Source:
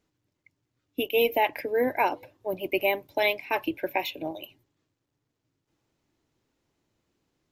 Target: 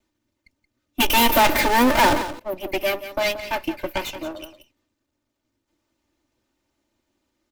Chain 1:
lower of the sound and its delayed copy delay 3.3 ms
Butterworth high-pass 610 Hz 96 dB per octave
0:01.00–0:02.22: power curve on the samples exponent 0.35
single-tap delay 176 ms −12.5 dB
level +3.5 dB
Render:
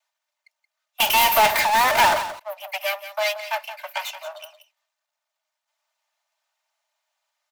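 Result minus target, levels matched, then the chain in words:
500 Hz band −3.0 dB
lower of the sound and its delayed copy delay 3.3 ms
0:01.00–0:02.22: power curve on the samples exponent 0.35
single-tap delay 176 ms −12.5 dB
level +3.5 dB

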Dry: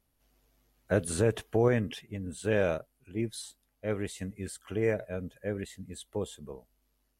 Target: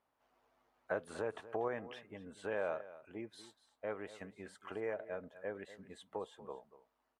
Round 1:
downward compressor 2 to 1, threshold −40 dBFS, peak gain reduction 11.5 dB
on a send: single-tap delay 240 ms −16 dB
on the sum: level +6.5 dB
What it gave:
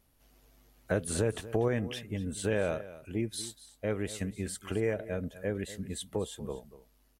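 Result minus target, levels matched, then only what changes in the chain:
1,000 Hz band −7.5 dB
add after downward compressor: resonant band-pass 970 Hz, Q 1.5

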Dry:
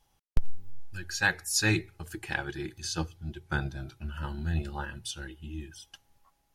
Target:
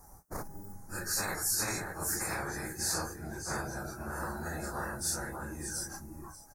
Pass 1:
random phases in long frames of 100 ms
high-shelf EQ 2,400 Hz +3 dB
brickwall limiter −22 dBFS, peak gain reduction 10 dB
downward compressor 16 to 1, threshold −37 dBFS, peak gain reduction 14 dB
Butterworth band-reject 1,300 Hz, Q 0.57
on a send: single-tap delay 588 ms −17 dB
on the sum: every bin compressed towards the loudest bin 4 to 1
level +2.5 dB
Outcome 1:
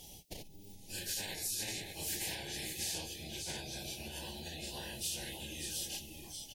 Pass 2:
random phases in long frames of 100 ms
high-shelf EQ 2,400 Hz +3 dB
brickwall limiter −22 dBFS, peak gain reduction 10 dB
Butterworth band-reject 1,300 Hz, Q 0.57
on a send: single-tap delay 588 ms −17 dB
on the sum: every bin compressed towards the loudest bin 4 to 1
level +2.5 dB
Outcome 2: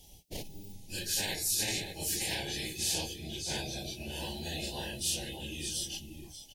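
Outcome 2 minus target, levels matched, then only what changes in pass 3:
1,000 Hz band −8.5 dB
change: Butterworth band-reject 3,100 Hz, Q 0.57

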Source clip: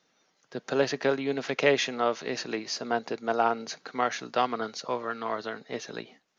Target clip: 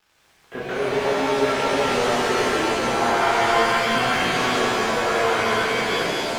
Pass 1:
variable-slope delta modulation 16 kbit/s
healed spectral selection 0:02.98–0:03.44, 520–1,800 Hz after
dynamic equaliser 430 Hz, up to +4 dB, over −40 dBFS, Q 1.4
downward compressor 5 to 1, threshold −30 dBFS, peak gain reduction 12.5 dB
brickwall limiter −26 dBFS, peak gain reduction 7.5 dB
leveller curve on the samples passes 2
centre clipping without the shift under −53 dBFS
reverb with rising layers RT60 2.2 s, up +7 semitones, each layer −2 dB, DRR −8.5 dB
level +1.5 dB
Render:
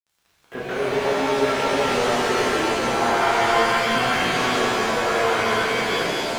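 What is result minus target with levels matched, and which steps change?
centre clipping without the shift: distortion +8 dB
change: centre clipping without the shift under −59 dBFS

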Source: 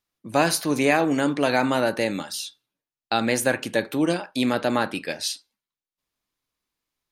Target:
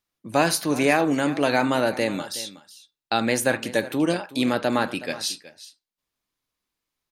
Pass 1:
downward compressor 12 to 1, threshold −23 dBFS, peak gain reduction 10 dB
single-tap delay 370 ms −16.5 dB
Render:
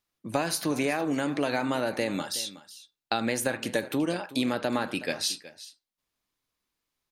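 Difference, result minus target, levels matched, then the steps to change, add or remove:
downward compressor: peak gain reduction +10 dB
remove: downward compressor 12 to 1, threshold −23 dBFS, peak gain reduction 10 dB

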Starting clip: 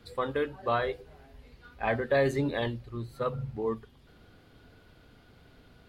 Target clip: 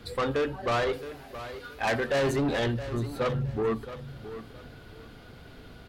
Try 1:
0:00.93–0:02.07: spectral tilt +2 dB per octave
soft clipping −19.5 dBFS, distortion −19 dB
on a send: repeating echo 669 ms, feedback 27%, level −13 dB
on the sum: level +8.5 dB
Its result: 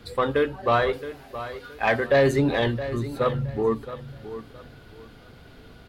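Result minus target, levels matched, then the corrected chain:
soft clipping: distortion −12 dB
0:00.93–0:02.07: spectral tilt +2 dB per octave
soft clipping −31.5 dBFS, distortion −7 dB
on a send: repeating echo 669 ms, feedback 27%, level −13 dB
on the sum: level +8.5 dB

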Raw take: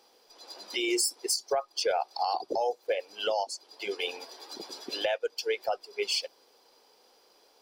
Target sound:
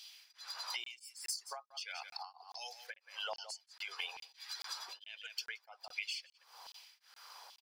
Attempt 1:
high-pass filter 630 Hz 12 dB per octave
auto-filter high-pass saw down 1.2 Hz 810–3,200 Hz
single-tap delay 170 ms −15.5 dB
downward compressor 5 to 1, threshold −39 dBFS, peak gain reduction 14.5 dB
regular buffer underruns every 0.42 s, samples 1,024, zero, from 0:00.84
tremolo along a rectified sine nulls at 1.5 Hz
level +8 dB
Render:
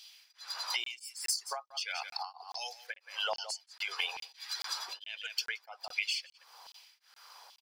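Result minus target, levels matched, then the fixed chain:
downward compressor: peak gain reduction −7 dB
high-pass filter 630 Hz 12 dB per octave
auto-filter high-pass saw down 1.2 Hz 810–3,200 Hz
single-tap delay 170 ms −15.5 dB
downward compressor 5 to 1, threshold −48 dBFS, peak gain reduction 21.5 dB
regular buffer underruns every 0.42 s, samples 1,024, zero, from 0:00.84
tremolo along a rectified sine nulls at 1.5 Hz
level +8 dB

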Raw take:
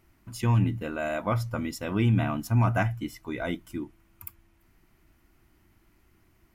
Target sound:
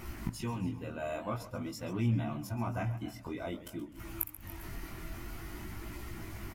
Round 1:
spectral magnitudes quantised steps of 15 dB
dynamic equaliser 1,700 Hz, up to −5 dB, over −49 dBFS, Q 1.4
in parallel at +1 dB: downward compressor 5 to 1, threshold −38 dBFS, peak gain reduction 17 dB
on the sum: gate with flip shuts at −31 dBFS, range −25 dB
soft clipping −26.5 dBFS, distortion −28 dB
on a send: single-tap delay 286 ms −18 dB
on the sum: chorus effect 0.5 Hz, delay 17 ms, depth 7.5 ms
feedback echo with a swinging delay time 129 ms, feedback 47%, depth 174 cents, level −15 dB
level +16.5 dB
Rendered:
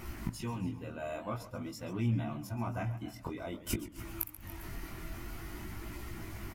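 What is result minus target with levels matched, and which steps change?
soft clipping: distortion +16 dB; downward compressor: peak gain reduction +5.5 dB
change: downward compressor 5 to 1, threshold −31 dBFS, peak gain reduction 11.5 dB
change: soft clipping −17 dBFS, distortion −44 dB

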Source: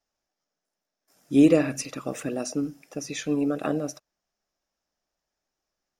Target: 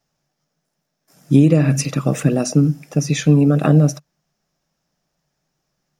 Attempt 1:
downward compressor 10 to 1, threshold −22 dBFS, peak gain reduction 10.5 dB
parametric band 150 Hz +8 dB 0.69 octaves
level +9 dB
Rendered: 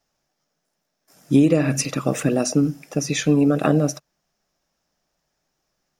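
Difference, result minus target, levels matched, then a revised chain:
125 Hz band −5.0 dB
downward compressor 10 to 1, threshold −22 dBFS, peak gain reduction 10.5 dB
parametric band 150 Hz +18 dB 0.69 octaves
level +9 dB

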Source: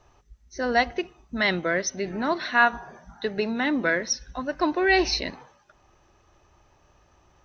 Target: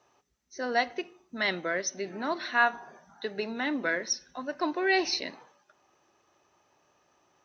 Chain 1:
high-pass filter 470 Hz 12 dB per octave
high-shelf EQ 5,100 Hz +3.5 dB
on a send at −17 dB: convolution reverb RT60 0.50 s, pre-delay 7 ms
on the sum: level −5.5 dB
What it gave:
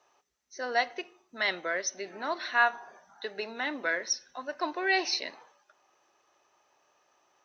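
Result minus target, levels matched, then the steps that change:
250 Hz band −6.5 dB
change: high-pass filter 220 Hz 12 dB per octave

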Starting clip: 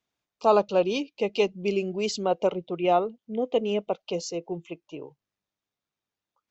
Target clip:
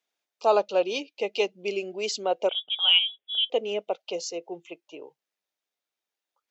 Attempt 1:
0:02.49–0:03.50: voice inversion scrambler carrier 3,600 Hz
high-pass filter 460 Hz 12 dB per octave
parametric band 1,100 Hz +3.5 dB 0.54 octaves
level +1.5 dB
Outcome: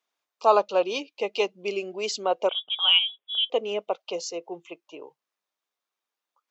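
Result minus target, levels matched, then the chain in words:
1,000 Hz band +3.0 dB
0:02.49–0:03.50: voice inversion scrambler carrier 3,600 Hz
high-pass filter 460 Hz 12 dB per octave
parametric band 1,100 Hz −5.5 dB 0.54 octaves
level +1.5 dB

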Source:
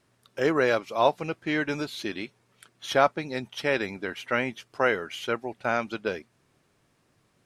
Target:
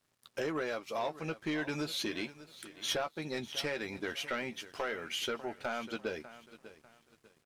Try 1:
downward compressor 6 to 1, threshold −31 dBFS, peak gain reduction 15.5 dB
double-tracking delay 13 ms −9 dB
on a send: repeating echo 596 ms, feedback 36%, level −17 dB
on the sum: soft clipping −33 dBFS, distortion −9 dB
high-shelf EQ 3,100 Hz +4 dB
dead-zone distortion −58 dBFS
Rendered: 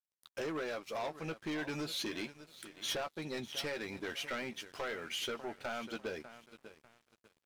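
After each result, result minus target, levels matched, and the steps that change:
dead-zone distortion: distortion +8 dB; soft clipping: distortion +6 dB
change: dead-zone distortion −65 dBFS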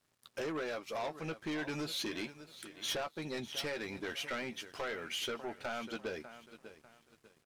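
soft clipping: distortion +6 dB
change: soft clipping −26.5 dBFS, distortion −15 dB

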